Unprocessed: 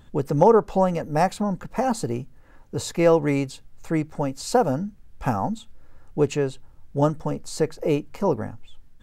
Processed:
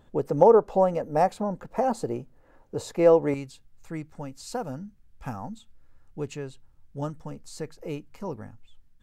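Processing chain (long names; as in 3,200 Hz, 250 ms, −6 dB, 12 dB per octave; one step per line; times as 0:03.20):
parametric band 550 Hz +9.5 dB 2 octaves, from 0:03.34 −4.5 dB
level −9 dB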